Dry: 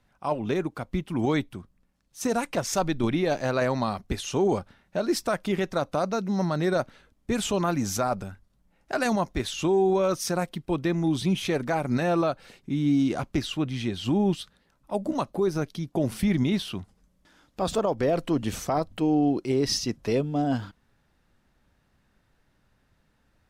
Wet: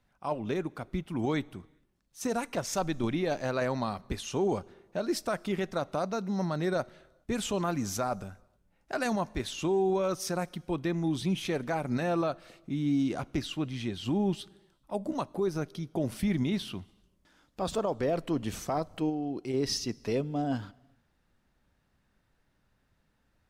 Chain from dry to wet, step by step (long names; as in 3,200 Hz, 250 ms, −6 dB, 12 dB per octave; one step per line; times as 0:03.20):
0:19.09–0:19.54: downward compressor, threshold −25 dBFS, peak gain reduction 6.5 dB
on a send: convolution reverb, pre-delay 3 ms, DRR 23 dB
on the sum: level −5 dB